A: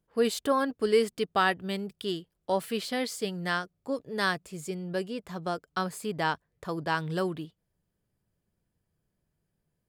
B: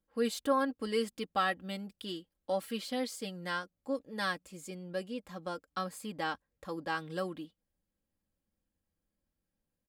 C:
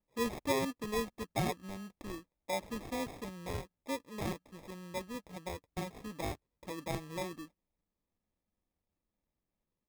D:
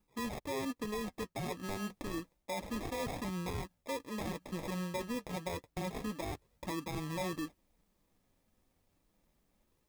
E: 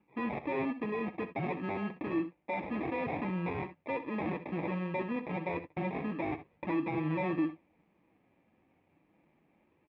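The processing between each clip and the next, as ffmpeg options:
-af "aecho=1:1:3.7:0.72,volume=-7.5dB"
-af "acrusher=samples=30:mix=1:aa=0.000001,volume=-3dB"
-af "areverse,acompressor=threshold=-43dB:ratio=6,areverse,flanger=delay=0.8:depth=7:regen=-50:speed=0.29:shape=sinusoidal,alimiter=level_in=23dB:limit=-24dB:level=0:latency=1:release=107,volume=-23dB,volume=17dB"
-af "asoftclip=type=tanh:threshold=-37dB,highpass=120,equalizer=f=150:t=q:w=4:g=3,equalizer=f=320:t=q:w=4:g=7,equalizer=f=820:t=q:w=4:g=4,equalizer=f=1.4k:t=q:w=4:g=-4,equalizer=f=2.4k:t=q:w=4:g=8,lowpass=f=2.5k:w=0.5412,lowpass=f=2.5k:w=1.3066,aecho=1:1:64|76:0.224|0.126,volume=6dB"

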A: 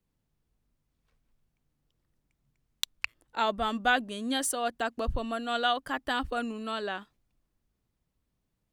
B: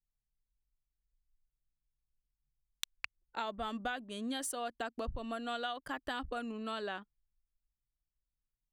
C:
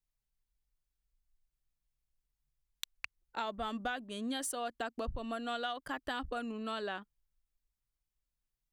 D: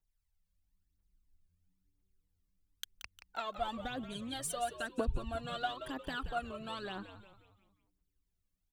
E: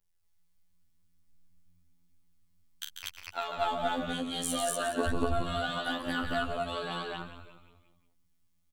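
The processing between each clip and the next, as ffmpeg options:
-af "anlmdn=0.01,acompressor=threshold=-32dB:ratio=6,volume=-3dB"
-af "asoftclip=type=tanh:threshold=-21.5dB,volume=1dB"
-filter_complex "[0:a]aphaser=in_gain=1:out_gain=1:delay=1.9:decay=0.71:speed=1:type=triangular,asplit=2[a][b];[b]asplit=5[c][d][e][f][g];[c]adelay=177,afreqshift=-100,volume=-11dB[h];[d]adelay=354,afreqshift=-200,volume=-17.7dB[i];[e]adelay=531,afreqshift=-300,volume=-24.5dB[j];[f]adelay=708,afreqshift=-400,volume=-31.2dB[k];[g]adelay=885,afreqshift=-500,volume=-38dB[l];[h][i][j][k][l]amix=inputs=5:normalize=0[m];[a][m]amix=inputs=2:normalize=0,volume=-4dB"
-af "afftfilt=real='hypot(re,im)*cos(PI*b)':imag='0':win_size=2048:overlap=0.75,aecho=1:1:40.82|142.9|239.1:0.447|0.501|1,volume=7dB"

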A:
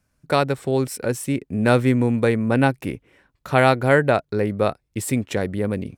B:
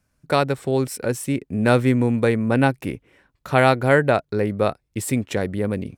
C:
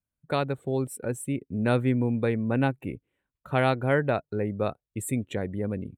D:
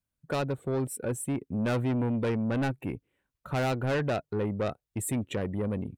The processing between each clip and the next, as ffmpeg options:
-af anull
-af "afftdn=nr=15:nf=-37,lowshelf=f=370:g=4,aexciter=amount=1.1:drive=3.1:freq=2.8k,volume=-9dB"
-af "asoftclip=type=tanh:threshold=-26dB,volume=2dB"

